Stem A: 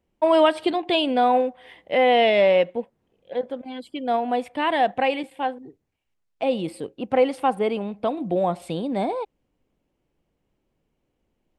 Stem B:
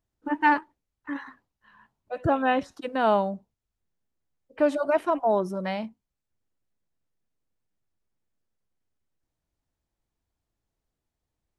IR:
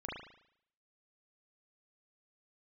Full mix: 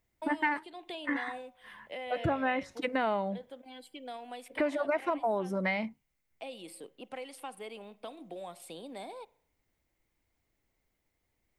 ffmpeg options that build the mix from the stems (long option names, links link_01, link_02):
-filter_complex "[0:a]aemphasis=mode=production:type=bsi,acrossover=split=260|1700[link_01][link_02][link_03];[link_01]acompressor=threshold=-46dB:ratio=4[link_04];[link_02]acompressor=threshold=-31dB:ratio=4[link_05];[link_03]acompressor=threshold=-36dB:ratio=4[link_06];[link_04][link_05][link_06]amix=inputs=3:normalize=0,volume=-12dB,asplit=2[link_07][link_08];[link_08]volume=-20dB[link_09];[1:a]equalizer=frequency=2100:width=5.1:gain=14.5,volume=2.5dB[link_10];[2:a]atrim=start_sample=2205[link_11];[link_09][link_11]afir=irnorm=-1:irlink=0[link_12];[link_07][link_10][link_12]amix=inputs=3:normalize=0,bandreject=frequency=50:width_type=h:width=6,bandreject=frequency=100:width_type=h:width=6,bandreject=frequency=150:width_type=h:width=6,acompressor=threshold=-28dB:ratio=5"